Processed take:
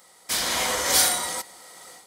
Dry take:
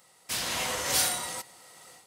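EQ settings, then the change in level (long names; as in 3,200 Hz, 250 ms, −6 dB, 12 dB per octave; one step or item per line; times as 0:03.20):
parametric band 120 Hz −15 dB 0.52 octaves
notch filter 2,700 Hz, Q 7.9
+6.5 dB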